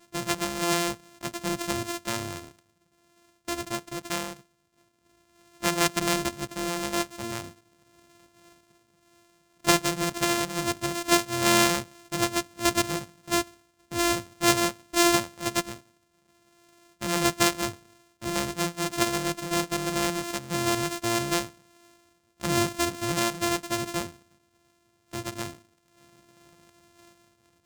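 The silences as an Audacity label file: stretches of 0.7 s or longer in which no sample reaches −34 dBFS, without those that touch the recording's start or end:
2.460000	3.480000	silence
4.330000	5.620000	silence
7.480000	9.640000	silence
15.760000	17.010000	silence
21.490000	22.410000	silence
24.080000	25.130000	silence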